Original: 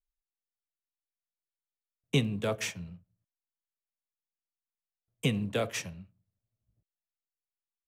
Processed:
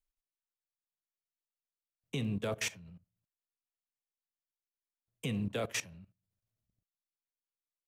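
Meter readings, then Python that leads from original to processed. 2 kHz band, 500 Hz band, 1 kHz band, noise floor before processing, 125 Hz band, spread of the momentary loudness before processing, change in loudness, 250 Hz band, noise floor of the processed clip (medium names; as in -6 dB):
-3.5 dB, -6.0 dB, -5.0 dB, under -85 dBFS, -6.0 dB, 15 LU, -4.5 dB, -4.5 dB, under -85 dBFS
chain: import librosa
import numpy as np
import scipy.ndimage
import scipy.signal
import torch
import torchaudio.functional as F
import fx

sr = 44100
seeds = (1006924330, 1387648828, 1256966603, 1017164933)

y = fx.level_steps(x, sr, step_db=18)
y = y * 10.0 ** (2.5 / 20.0)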